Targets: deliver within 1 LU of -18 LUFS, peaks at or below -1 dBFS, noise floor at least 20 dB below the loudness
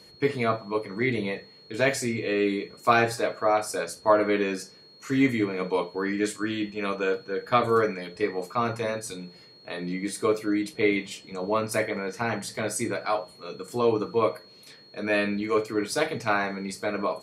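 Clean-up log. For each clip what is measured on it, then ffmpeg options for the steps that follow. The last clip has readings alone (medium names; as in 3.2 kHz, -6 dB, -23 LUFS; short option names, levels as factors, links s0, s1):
steady tone 4.3 kHz; tone level -51 dBFS; loudness -27.0 LUFS; peak level -6.0 dBFS; loudness target -18.0 LUFS
-> -af "bandreject=f=4300:w=30"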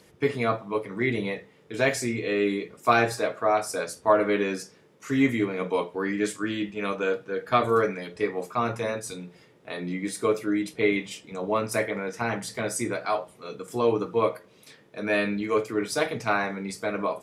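steady tone not found; loudness -27.0 LUFS; peak level -6.0 dBFS; loudness target -18.0 LUFS
-> -af "volume=2.82,alimiter=limit=0.891:level=0:latency=1"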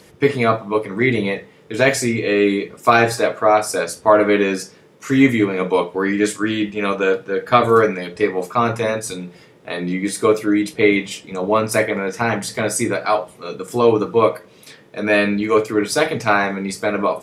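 loudness -18.0 LUFS; peak level -1.0 dBFS; noise floor -48 dBFS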